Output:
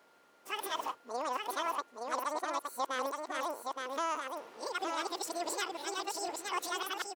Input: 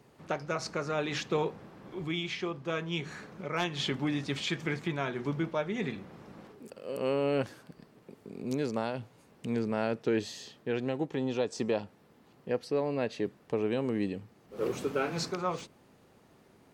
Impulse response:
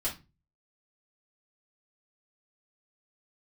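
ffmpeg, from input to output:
-filter_complex "[0:a]areverse,aeval=exprs='val(0)+0.000708*sin(2*PI*600*n/s)':channel_layout=same,asetrate=103194,aresample=44100,lowshelf=frequency=140:gain=-12,asplit=2[link_01][link_02];[link_02]aecho=0:1:869:0.631[link_03];[link_01][link_03]amix=inputs=2:normalize=0,volume=-4.5dB"

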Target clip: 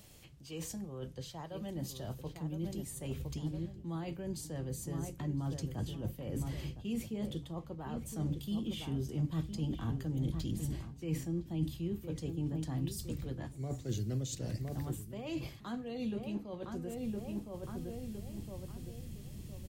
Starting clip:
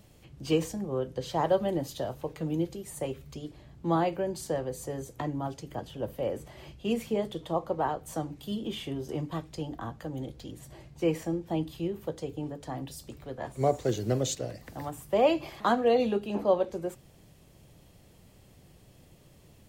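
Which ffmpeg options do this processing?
ffmpeg -i in.wav -filter_complex "[0:a]highshelf=frequency=2200:gain=9.5,bandreject=frequency=60:width_type=h:width=6,bandreject=frequency=120:width_type=h:width=6,asplit=2[link_01][link_02];[link_02]adelay=1012,lowpass=frequency=1700:poles=1,volume=-11dB,asplit=2[link_03][link_04];[link_04]adelay=1012,lowpass=frequency=1700:poles=1,volume=0.34,asplit=2[link_05][link_06];[link_06]adelay=1012,lowpass=frequency=1700:poles=1,volume=0.34,asplit=2[link_07][link_08];[link_08]adelay=1012,lowpass=frequency=1700:poles=1,volume=0.34[link_09];[link_01][link_03][link_05][link_07][link_09]amix=inputs=5:normalize=0,areverse,acompressor=threshold=-38dB:ratio=8,areverse,asubboost=boost=6.5:cutoff=230,volume=-3dB" out.wav

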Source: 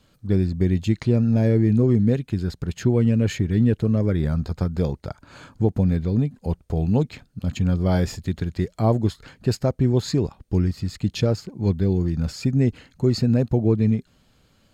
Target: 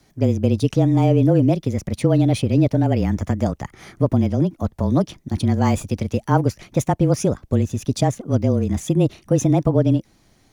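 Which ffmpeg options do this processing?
ffmpeg -i in.wav -af "asetrate=61740,aresample=44100,afreqshift=-25,volume=2.5dB" out.wav

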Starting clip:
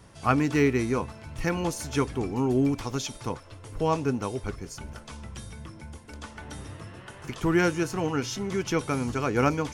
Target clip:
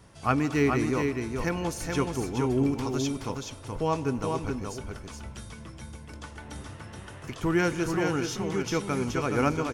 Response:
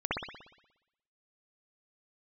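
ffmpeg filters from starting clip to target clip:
-filter_complex "[0:a]aecho=1:1:424:0.596,asplit=2[link_01][link_02];[1:a]atrim=start_sample=2205,adelay=97[link_03];[link_02][link_03]afir=irnorm=-1:irlink=0,volume=-25.5dB[link_04];[link_01][link_04]amix=inputs=2:normalize=0,volume=-2dB"

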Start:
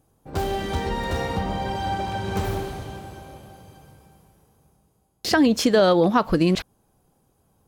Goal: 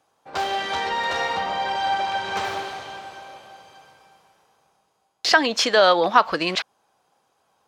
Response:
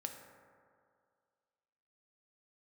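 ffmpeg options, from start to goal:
-filter_complex "[0:a]highpass=frequency=400:poles=1,acrossover=split=600 6400:gain=0.2 1 0.112[link_01][link_02][link_03];[link_01][link_02][link_03]amix=inputs=3:normalize=0,volume=7.5dB"

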